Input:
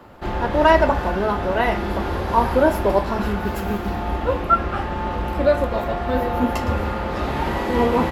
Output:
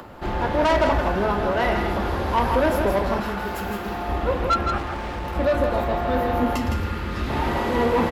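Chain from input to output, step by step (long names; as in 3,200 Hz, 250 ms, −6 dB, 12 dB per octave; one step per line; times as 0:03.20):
0:04.78–0:05.36: gain into a clipping stage and back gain 28 dB
0:06.56–0:07.30: parametric band 680 Hz −13 dB 1.2 octaves
soft clipping −15 dBFS, distortion −11 dB
single-tap delay 162 ms −6 dB
upward compression, threshold −36 dBFS
0:03.20–0:04.09: low-shelf EQ 360 Hz −8 dB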